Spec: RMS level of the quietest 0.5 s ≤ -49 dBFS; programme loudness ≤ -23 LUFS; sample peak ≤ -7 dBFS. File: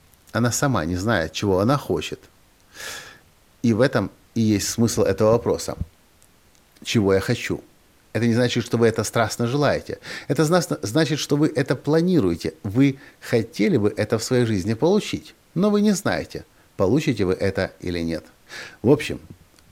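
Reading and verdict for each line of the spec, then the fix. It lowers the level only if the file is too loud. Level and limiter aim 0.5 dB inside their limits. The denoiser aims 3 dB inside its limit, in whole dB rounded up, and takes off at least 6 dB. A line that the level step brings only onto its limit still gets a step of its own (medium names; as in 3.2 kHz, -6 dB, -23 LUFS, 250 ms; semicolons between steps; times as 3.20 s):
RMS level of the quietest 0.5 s -56 dBFS: pass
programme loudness -21.5 LUFS: fail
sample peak -4.0 dBFS: fail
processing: trim -2 dB; peak limiter -7.5 dBFS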